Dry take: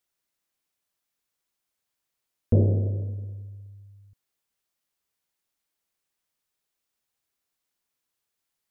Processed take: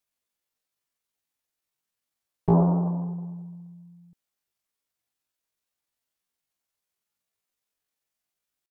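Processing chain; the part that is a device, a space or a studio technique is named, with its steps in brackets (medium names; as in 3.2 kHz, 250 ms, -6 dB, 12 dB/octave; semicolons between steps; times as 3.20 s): chipmunk voice (pitch shift +9.5 st)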